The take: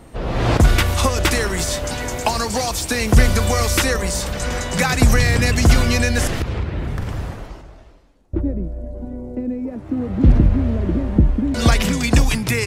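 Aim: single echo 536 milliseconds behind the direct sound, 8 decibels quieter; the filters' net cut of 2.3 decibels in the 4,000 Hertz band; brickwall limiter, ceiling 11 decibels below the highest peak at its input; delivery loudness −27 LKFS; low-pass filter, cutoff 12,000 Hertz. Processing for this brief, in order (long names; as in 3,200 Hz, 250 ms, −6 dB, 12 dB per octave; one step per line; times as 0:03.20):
low-pass filter 12,000 Hz
parametric band 4,000 Hz −3 dB
brickwall limiter −12 dBFS
single-tap delay 536 ms −8 dB
level −5 dB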